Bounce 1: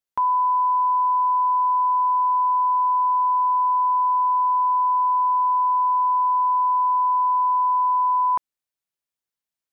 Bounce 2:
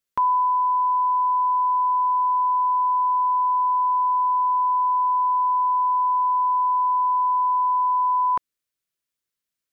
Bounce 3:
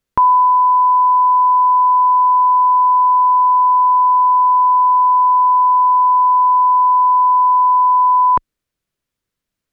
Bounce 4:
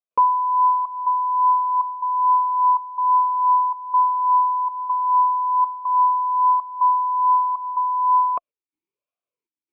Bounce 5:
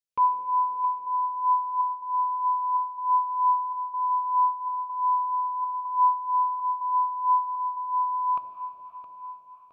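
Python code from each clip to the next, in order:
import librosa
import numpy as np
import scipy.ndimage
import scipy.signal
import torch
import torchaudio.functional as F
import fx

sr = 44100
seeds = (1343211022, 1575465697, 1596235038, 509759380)

y1 = fx.peak_eq(x, sr, hz=810.0, db=-9.5, octaves=0.54)
y1 = fx.rider(y1, sr, range_db=10, speed_s=0.5)
y1 = y1 * librosa.db_to_amplitude(3.5)
y2 = fx.tilt_eq(y1, sr, slope=-2.5)
y2 = y2 * librosa.db_to_amplitude(9.0)
y3 = fx.step_gate(y2, sr, bpm=141, pattern='.xxxxxxx.', floor_db=-12.0, edge_ms=4.5)
y3 = fx.vowel_sweep(y3, sr, vowels='a-u', hz=1.2)
y3 = y3 * librosa.db_to_amplitude(2.5)
y4 = fx.echo_feedback(y3, sr, ms=666, feedback_pct=44, wet_db=-12)
y4 = fx.rev_plate(y4, sr, seeds[0], rt60_s=4.8, hf_ratio=1.0, predelay_ms=0, drr_db=4.5)
y4 = fx.phaser_stages(y4, sr, stages=2, low_hz=450.0, high_hz=1000.0, hz=3.1, feedback_pct=50)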